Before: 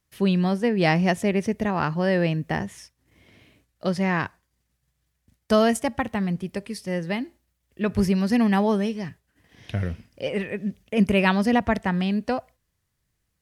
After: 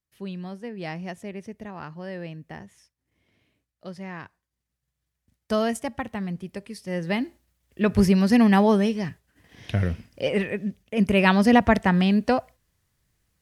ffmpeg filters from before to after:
ffmpeg -i in.wav -af "volume=12dB,afade=type=in:start_time=4.25:duration=1.29:silence=0.375837,afade=type=in:start_time=6.82:duration=0.41:silence=0.398107,afade=type=out:start_time=10.42:duration=0.42:silence=0.398107,afade=type=in:start_time=10.84:duration=0.68:silence=0.354813" out.wav

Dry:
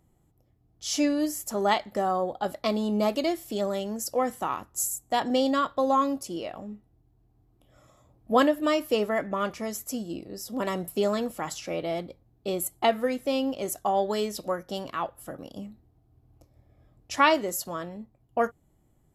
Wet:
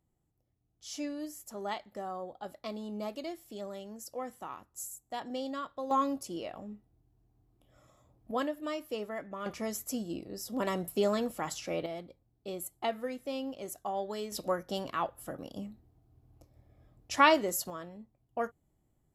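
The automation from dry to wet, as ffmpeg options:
ffmpeg -i in.wav -af "asetnsamples=nb_out_samples=441:pad=0,asendcmd='5.91 volume volume -5dB;8.31 volume volume -12dB;9.46 volume volume -3dB;11.86 volume volume -10dB;14.32 volume volume -2dB;17.7 volume volume -8.5dB',volume=-13dB" out.wav

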